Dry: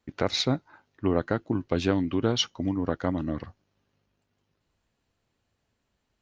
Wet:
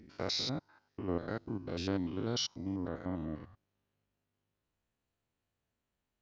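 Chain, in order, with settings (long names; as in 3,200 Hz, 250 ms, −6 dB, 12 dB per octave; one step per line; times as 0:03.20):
spectrum averaged block by block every 100 ms
parametric band 5,000 Hz +12.5 dB 0.5 octaves, from 0:02.88 −4 dB
level −8.5 dB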